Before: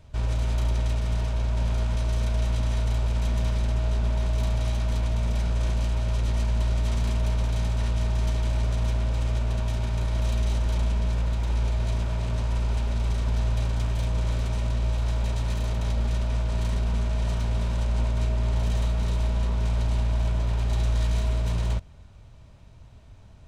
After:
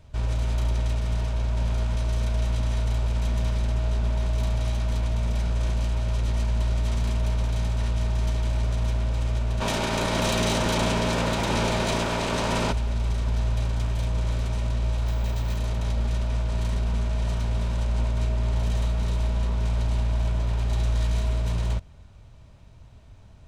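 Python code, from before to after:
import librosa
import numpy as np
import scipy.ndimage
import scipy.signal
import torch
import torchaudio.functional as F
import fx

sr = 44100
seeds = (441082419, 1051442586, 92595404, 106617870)

y = fx.spec_clip(x, sr, under_db=24, at=(9.6, 12.71), fade=0.02)
y = fx.resample_bad(y, sr, factor=2, down='filtered', up='hold', at=(15.07, 15.57))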